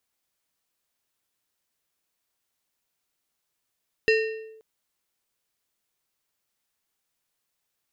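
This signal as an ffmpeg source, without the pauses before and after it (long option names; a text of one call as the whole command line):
ffmpeg -f lavfi -i "aevalsrc='0.188*pow(10,-3*t/0.91)*sin(2*PI*440*t+0.97*clip(1-t/0.53,0,1)*sin(2*PI*5.17*440*t))':duration=0.53:sample_rate=44100" out.wav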